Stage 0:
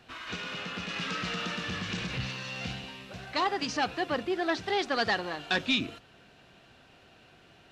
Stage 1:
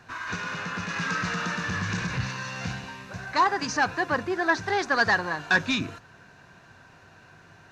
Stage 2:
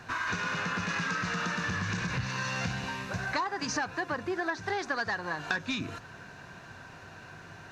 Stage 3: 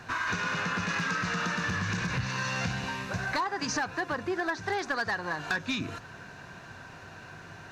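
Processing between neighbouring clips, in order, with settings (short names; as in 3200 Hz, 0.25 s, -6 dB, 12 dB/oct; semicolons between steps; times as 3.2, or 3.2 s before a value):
thirty-one-band EQ 100 Hz +10 dB, 160 Hz +7 dB, 1000 Hz +10 dB, 1600 Hz +10 dB, 3150 Hz -9 dB, 6300 Hz +7 dB; gain +1.5 dB
compressor 10:1, threshold -33 dBFS, peak gain reduction 16.5 dB; gain +4.5 dB
overloaded stage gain 23.5 dB; gain +1.5 dB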